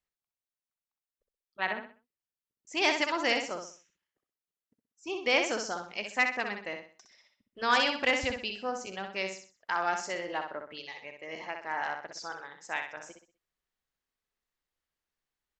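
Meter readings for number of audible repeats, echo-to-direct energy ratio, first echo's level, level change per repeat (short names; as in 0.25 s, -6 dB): 4, -5.5 dB, -6.0 dB, -9.5 dB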